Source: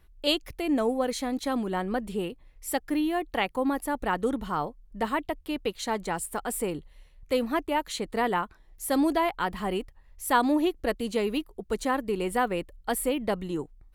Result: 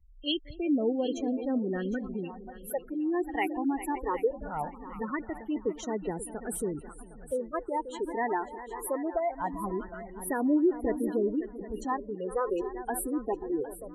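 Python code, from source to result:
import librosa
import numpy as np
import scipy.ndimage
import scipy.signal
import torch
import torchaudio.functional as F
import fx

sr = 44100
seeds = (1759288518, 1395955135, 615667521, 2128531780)

p1 = fx.echo_multitap(x, sr, ms=(215, 393, 536), db=(-17.5, -13.5, -12.0))
p2 = fx.spec_gate(p1, sr, threshold_db=-15, keep='strong')
p3 = fx.dynamic_eq(p2, sr, hz=380.0, q=2.5, threshold_db=-39.0, ratio=4.0, max_db=5)
p4 = fx.phaser_stages(p3, sr, stages=8, low_hz=160.0, high_hz=1300.0, hz=0.21, feedback_pct=20)
p5 = p4 + fx.echo_thinned(p4, sr, ms=760, feedback_pct=29, hz=420.0, wet_db=-14, dry=0)
y = p5 * librosa.db_to_amplitude(-1.5)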